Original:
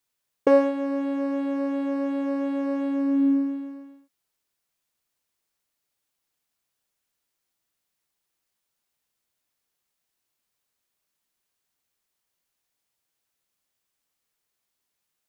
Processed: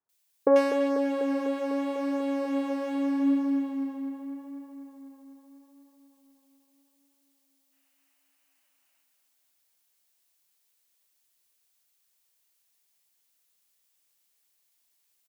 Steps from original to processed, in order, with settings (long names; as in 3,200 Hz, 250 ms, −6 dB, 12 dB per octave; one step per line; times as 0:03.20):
spectral tilt +2.5 dB per octave
multiband delay without the direct sound lows, highs 90 ms, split 1,300 Hz
gain on a spectral selection 0:07.73–0:09.03, 540–3,100 Hz +9 dB
tape delay 248 ms, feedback 77%, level −6.5 dB, low-pass 3,400 Hz